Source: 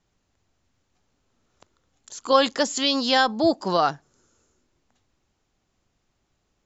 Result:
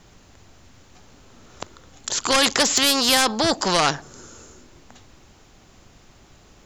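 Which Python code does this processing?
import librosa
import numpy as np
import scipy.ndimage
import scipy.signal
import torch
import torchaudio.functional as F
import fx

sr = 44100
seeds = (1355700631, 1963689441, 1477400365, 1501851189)

y = fx.fold_sine(x, sr, drive_db=6, ceiling_db=-4.5)
y = fx.spectral_comp(y, sr, ratio=2.0)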